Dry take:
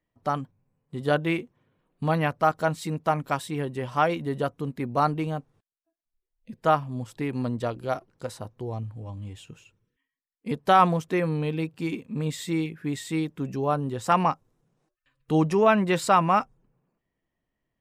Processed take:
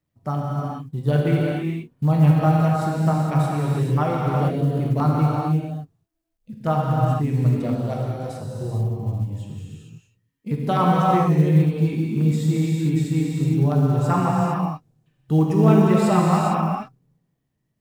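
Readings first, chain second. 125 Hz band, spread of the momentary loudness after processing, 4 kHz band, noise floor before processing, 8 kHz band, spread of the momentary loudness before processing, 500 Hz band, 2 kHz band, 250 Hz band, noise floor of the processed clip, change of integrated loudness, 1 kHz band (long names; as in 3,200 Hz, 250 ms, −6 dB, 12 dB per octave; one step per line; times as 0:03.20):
+13.0 dB, 12 LU, −1.0 dB, below −85 dBFS, can't be measured, 16 LU, +2.0 dB, −3.0 dB, +8.0 dB, −75 dBFS, +5.5 dB, +0.5 dB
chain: auto-filter notch saw down 7.8 Hz 850–4,100 Hz
parametric band 130 Hz +13.5 dB 1.5 octaves
reverb whose tail is shaped and stops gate 480 ms flat, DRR −4 dB
log-companded quantiser 8 bits
level −4.5 dB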